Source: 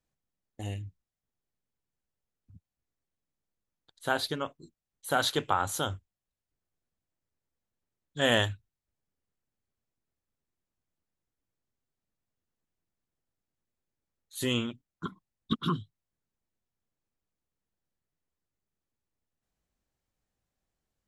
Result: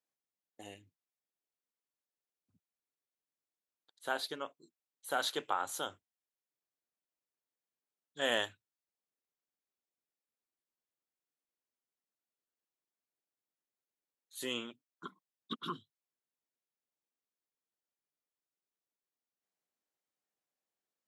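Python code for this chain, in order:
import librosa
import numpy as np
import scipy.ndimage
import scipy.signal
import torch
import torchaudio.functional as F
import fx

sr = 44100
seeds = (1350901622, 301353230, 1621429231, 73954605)

y = scipy.signal.sosfilt(scipy.signal.butter(2, 330.0, 'highpass', fs=sr, output='sos'), x)
y = y * librosa.db_to_amplitude(-6.5)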